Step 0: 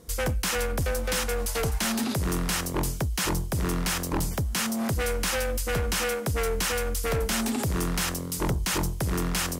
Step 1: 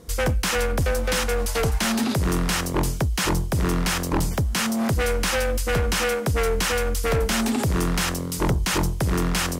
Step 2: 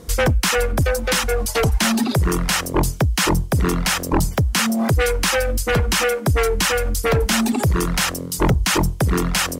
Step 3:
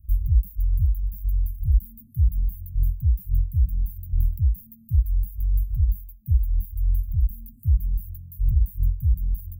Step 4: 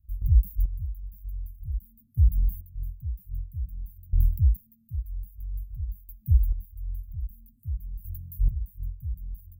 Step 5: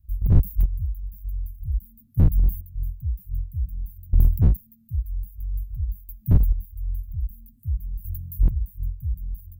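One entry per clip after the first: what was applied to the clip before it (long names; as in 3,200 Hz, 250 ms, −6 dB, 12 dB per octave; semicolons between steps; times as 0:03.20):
high-shelf EQ 7,700 Hz −6.5 dB; level +5 dB
reverb reduction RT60 1.5 s; level +6 dB
inverse Chebyshev band-stop filter 480–5,300 Hz, stop band 80 dB; level +2 dB
gate pattern ".xx......" 69 BPM −12 dB
wavefolder on the positive side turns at −19 dBFS; level +5.5 dB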